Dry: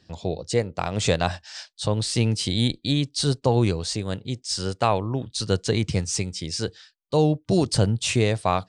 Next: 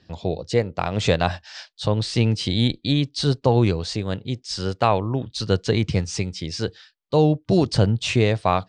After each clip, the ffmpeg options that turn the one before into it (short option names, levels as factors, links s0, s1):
-af "lowpass=4600,volume=1.33"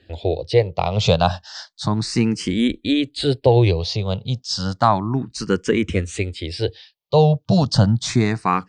-filter_complex "[0:a]asplit=2[s0][s1];[s1]afreqshift=0.32[s2];[s0][s2]amix=inputs=2:normalize=1,volume=1.88"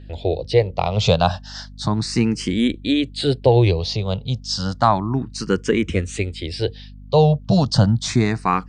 -af "aeval=exprs='val(0)+0.0126*(sin(2*PI*50*n/s)+sin(2*PI*2*50*n/s)/2+sin(2*PI*3*50*n/s)/3+sin(2*PI*4*50*n/s)/4+sin(2*PI*5*50*n/s)/5)':c=same"